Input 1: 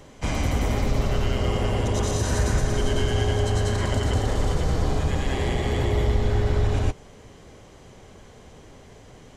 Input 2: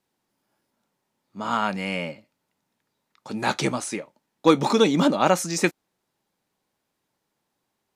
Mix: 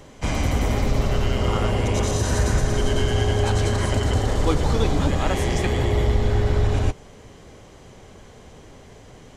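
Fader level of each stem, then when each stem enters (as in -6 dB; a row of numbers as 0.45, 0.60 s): +2.0, -8.0 dB; 0.00, 0.00 s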